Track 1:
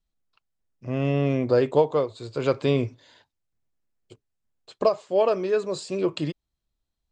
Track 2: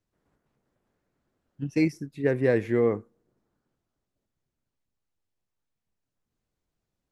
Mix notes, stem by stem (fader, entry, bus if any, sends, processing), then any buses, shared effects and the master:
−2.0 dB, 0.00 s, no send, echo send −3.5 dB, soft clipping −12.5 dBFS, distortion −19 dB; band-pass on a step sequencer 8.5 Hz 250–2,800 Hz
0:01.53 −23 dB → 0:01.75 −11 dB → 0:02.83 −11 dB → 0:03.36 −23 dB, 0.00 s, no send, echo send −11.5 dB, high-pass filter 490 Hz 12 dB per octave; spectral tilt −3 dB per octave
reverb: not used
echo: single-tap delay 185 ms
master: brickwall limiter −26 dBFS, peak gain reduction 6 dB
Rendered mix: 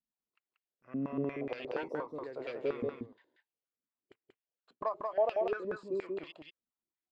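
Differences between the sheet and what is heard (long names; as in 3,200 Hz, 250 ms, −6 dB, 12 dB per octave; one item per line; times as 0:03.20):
stem 2 −23.0 dB → −32.0 dB
master: missing brickwall limiter −26 dBFS, peak gain reduction 6 dB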